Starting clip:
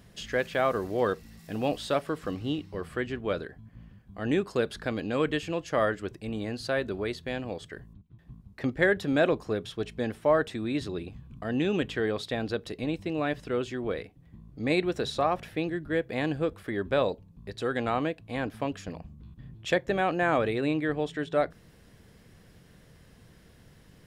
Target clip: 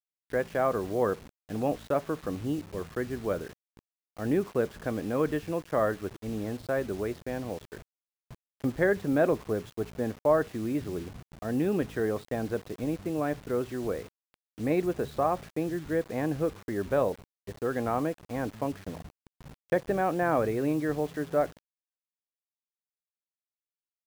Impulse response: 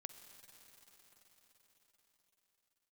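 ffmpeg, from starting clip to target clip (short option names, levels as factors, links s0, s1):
-af "lowpass=1400,agate=range=0.282:threshold=0.00631:ratio=16:detection=peak,acrusher=bits=7:mix=0:aa=0.000001"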